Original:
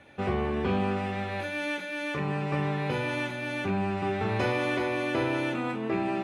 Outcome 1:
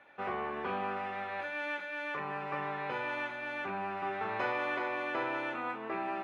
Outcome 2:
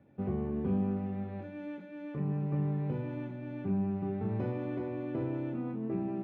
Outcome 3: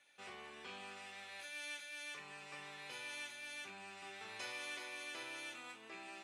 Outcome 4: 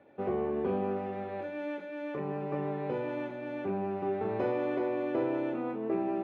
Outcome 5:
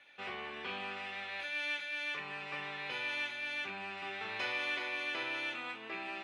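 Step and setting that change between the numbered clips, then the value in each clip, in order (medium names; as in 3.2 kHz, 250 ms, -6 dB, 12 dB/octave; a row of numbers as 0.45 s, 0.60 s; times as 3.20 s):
band-pass filter, frequency: 1.2 kHz, 170 Hz, 8 kHz, 440 Hz, 3.1 kHz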